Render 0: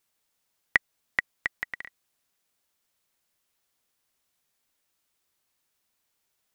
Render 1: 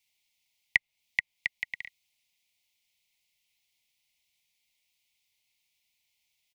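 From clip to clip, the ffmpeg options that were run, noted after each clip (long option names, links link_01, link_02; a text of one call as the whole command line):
ffmpeg -i in.wav -filter_complex "[0:a]firequalizer=gain_entry='entry(110,0);entry(360,-12);entry(520,-8);entry(910,-3);entry(1400,-29);entry(2100,11);entry(8100,1)':delay=0.05:min_phase=1,acrossover=split=140|2600[link_01][link_02][link_03];[link_03]acompressor=threshold=-37dB:ratio=6[link_04];[link_01][link_02][link_04]amix=inputs=3:normalize=0,volume=-3.5dB" out.wav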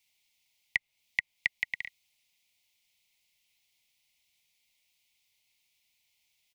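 ffmpeg -i in.wav -af "alimiter=limit=-14dB:level=0:latency=1:release=58,volume=2.5dB" out.wav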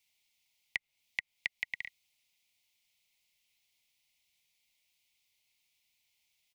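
ffmpeg -i in.wav -af "acompressor=threshold=-27dB:ratio=6,volume=-2.5dB" out.wav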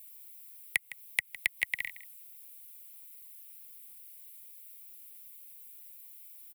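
ffmpeg -i in.wav -filter_complex "[0:a]acrossover=split=170|1300[link_01][link_02][link_03];[link_03]aexciter=amount=5.4:drive=9.9:freq=8600[link_04];[link_01][link_02][link_04]amix=inputs=3:normalize=0,aecho=1:1:159:0.158,volume=5.5dB" out.wav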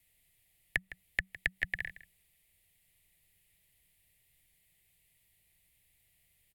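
ffmpeg -i in.wav -af "afreqshift=-190,aemphasis=mode=reproduction:type=riaa" out.wav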